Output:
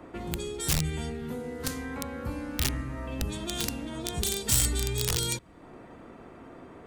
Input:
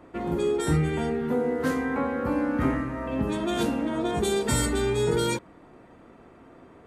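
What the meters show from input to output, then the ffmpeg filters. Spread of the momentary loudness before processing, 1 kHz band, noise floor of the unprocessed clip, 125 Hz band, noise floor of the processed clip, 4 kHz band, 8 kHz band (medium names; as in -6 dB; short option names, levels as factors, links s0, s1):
4 LU, -10.0 dB, -52 dBFS, -3.0 dB, -49 dBFS, +3.0 dB, +5.5 dB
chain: -filter_complex "[0:a]aeval=exprs='(mod(6.31*val(0)+1,2)-1)/6.31':c=same,acrossover=split=120|3000[s0][s1][s2];[s1]acompressor=threshold=0.00562:ratio=3[s3];[s0][s3][s2]amix=inputs=3:normalize=0,volume=1.5"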